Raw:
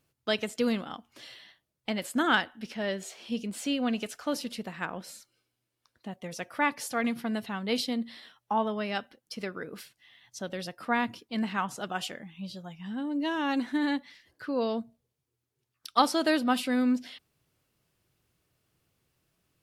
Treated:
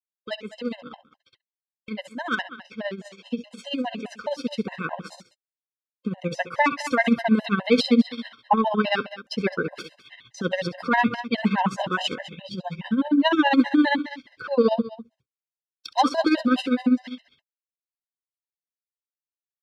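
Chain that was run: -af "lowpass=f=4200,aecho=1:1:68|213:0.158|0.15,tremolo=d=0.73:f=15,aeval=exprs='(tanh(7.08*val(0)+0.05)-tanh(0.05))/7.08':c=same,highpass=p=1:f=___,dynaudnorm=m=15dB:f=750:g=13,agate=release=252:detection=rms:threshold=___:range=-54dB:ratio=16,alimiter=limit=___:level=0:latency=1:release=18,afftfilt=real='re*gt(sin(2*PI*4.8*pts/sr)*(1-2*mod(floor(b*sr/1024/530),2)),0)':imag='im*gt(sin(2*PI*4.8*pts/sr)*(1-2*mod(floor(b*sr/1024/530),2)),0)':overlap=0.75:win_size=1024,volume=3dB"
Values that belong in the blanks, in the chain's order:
43, -47dB, -10dB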